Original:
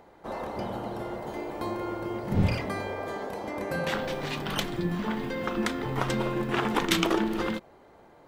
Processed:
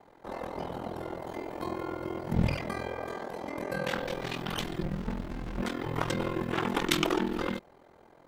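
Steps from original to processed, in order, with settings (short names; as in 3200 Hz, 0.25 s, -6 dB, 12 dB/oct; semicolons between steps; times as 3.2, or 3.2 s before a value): ring modulator 21 Hz; 4.82–5.62 running maximum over 65 samples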